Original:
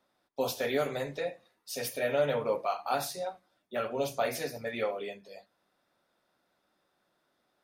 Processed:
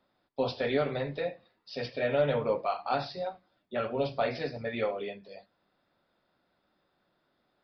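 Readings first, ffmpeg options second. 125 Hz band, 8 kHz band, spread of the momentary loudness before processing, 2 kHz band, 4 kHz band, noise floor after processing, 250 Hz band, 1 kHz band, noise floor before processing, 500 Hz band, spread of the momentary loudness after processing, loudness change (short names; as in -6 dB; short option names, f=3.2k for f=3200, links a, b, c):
+5.5 dB, under -20 dB, 11 LU, 0.0 dB, -0.5 dB, -76 dBFS, +3.0 dB, +0.5 dB, -77 dBFS, +1.0 dB, 13 LU, +1.0 dB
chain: -af "lowshelf=f=220:g=7.5,aresample=11025,aresample=44100,aeval=exprs='0.168*(cos(1*acos(clip(val(0)/0.168,-1,1)))-cos(1*PI/2))+0.00133*(cos(4*acos(clip(val(0)/0.168,-1,1)))-cos(4*PI/2))':c=same"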